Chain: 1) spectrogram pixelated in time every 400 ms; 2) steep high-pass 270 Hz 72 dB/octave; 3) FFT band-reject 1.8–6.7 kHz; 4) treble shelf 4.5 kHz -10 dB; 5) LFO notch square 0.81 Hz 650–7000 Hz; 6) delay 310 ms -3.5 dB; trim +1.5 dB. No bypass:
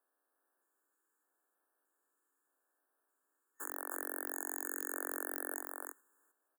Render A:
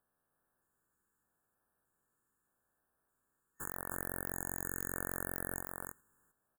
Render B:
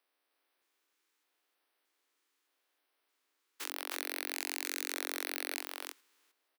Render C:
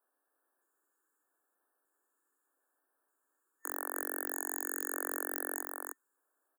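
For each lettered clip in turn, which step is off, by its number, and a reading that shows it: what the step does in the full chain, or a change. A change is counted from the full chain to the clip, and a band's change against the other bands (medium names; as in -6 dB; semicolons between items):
2, 250 Hz band +3.5 dB; 3, 2 kHz band +5.0 dB; 1, momentary loudness spread change +1 LU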